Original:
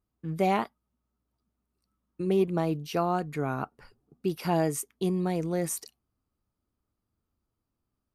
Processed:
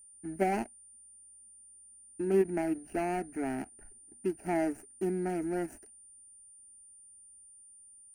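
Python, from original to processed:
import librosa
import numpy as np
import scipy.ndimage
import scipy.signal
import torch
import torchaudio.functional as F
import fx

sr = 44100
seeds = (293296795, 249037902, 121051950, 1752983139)

p1 = scipy.ndimage.median_filter(x, 41, mode='constant')
p2 = fx.level_steps(p1, sr, step_db=12)
p3 = p1 + F.gain(torch.from_numpy(p2), -1.5).numpy()
p4 = p3 + 10.0 ** (-50.0 / 20.0) * np.sin(2.0 * np.pi * 9200.0 * np.arange(len(p3)) / sr)
p5 = fx.fixed_phaser(p4, sr, hz=740.0, stages=8)
p6 = fx.end_taper(p5, sr, db_per_s=450.0)
y = F.gain(torch.from_numpy(p6), -1.5).numpy()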